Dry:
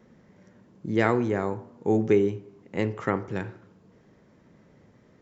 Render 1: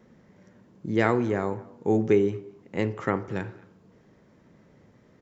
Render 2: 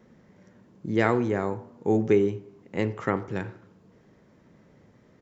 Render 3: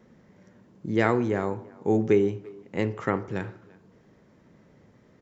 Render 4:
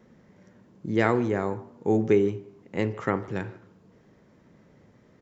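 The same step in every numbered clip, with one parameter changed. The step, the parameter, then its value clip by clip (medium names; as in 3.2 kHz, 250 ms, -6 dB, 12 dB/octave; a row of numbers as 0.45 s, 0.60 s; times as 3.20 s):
speakerphone echo, time: 220 ms, 90 ms, 340 ms, 150 ms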